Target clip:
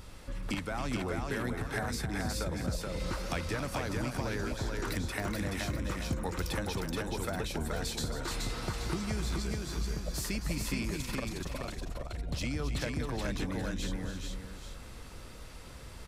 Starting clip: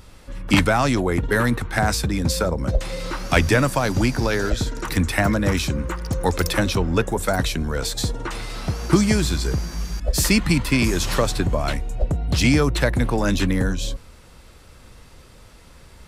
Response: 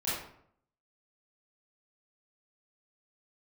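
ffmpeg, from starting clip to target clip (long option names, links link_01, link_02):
-filter_complex "[0:a]acompressor=threshold=-31dB:ratio=6,asettb=1/sr,asplit=3[link_01][link_02][link_03];[link_01]atrim=end=10.964[link_04];[link_02]atrim=start=10.96:end=12.17,asetpts=PTS-STARTPTS,afade=type=in:duration=0.004:curve=qsin,afade=type=out:start_time=1.206:duration=0.004:curve=qsin,tremolo=f=22:d=1[link_05];[link_03]atrim=start=12.166[link_06];[link_04][link_05]acrossfade=duration=0.004:curve1=hsin:curve2=qsin[link_07];[link_07][link_06]acrossfade=duration=0.004:curve1=qsin:curve2=hsin,asplit=2[link_08][link_09];[link_09]aecho=0:1:272|427|770|828:0.335|0.708|0.141|0.282[link_10];[link_08][link_10]amix=inputs=2:normalize=0,volume=-3dB"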